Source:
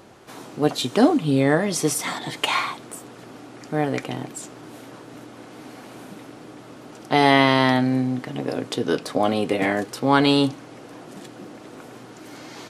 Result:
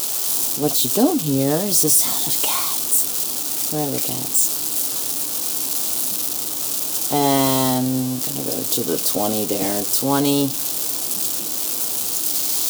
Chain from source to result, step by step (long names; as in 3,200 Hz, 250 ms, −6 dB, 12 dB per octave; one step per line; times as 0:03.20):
spike at every zero crossing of −10 dBFS
parametric band 1,900 Hz −14 dB 1.1 octaves